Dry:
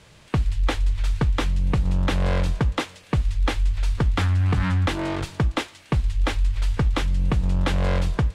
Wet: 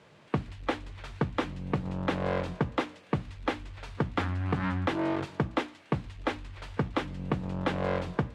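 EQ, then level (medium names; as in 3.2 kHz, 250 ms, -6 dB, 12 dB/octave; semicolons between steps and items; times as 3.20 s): high-pass 170 Hz 12 dB/octave; low-pass 1.4 kHz 6 dB/octave; hum notches 60/120/180/240/300 Hz; -1.0 dB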